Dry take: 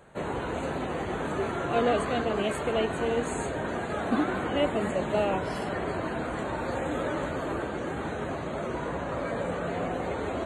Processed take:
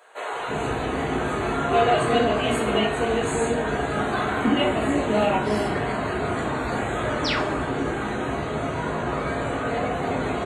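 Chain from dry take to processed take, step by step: painted sound fall, 7.24–7.5, 220–6200 Hz -33 dBFS; bands offset in time highs, lows 0.33 s, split 500 Hz; two-slope reverb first 0.41 s, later 1.6 s, from -27 dB, DRR -1.5 dB; gain +3.5 dB

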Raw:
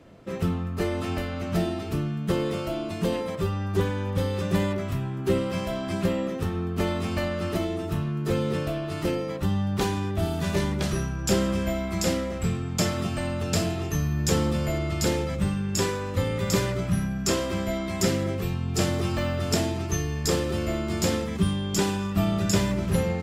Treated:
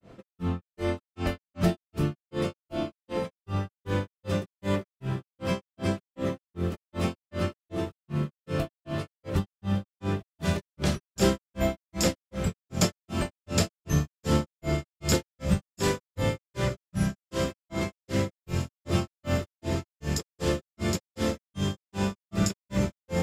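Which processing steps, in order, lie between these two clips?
diffused feedback echo 1.63 s, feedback 71%, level -12 dB; grains 0.233 s, grains 2.6/s, pitch spread up and down by 0 st; gain +2.5 dB

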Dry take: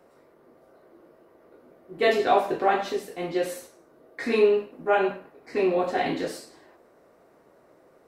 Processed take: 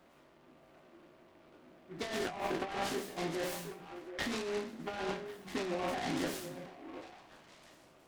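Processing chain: spectral trails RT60 0.37 s; bell 460 Hz -12 dB 0.52 oct; negative-ratio compressor -30 dBFS, ratio -1; delay with a stepping band-pass 0.365 s, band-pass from 160 Hz, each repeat 1.4 oct, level -6 dB; noise-modulated delay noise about 1300 Hz, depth 0.081 ms; gain -6.5 dB

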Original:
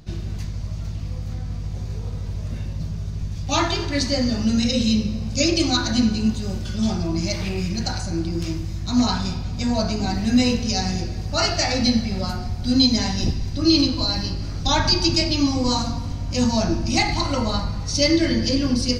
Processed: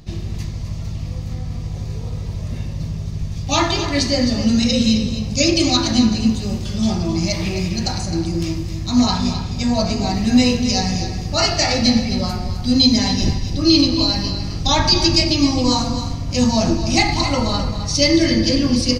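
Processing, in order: notch 1500 Hz, Q 7.1; de-hum 53.03 Hz, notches 28; on a send: echo 0.262 s -10.5 dB; on the sum: gain +4 dB

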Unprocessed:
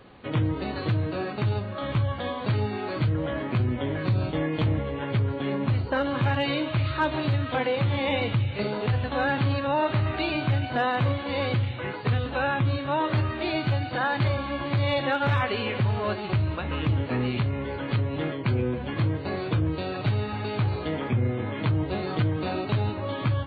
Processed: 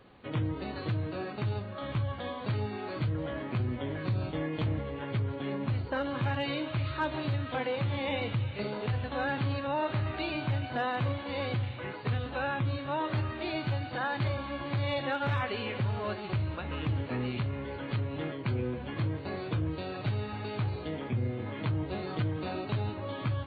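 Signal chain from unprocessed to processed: 20.7–21.46 bell 1300 Hz -3.5 dB 1.6 oct; thinning echo 0.719 s, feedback 73%, level -20.5 dB; gain -6.5 dB

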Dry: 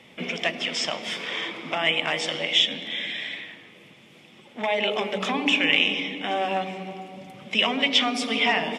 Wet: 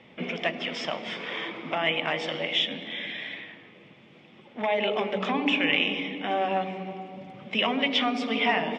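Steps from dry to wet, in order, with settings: LPF 5300 Hz 12 dB/oct; high shelf 3400 Hz -11 dB

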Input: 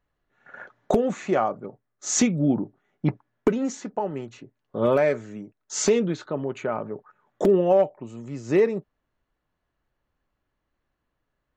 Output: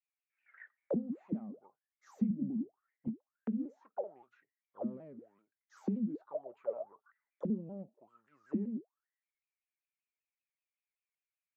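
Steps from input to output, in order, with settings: self-modulated delay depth 0.052 ms; auto-wah 210–2400 Hz, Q 22, down, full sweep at -18.5 dBFS; shaped vibrato saw down 5.2 Hz, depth 160 cents; gain +1.5 dB

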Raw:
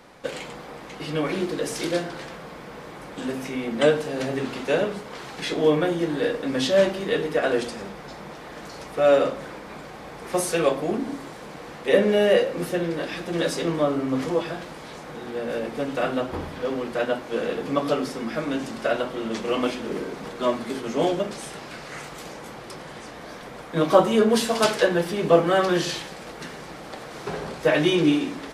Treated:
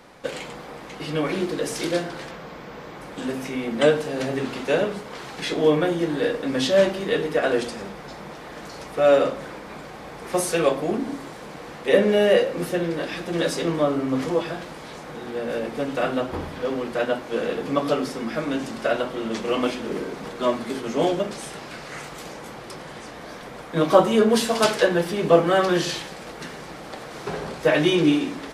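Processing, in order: 2.31–3.01 bell 9700 Hz -13 dB 0.43 oct; gain +1 dB

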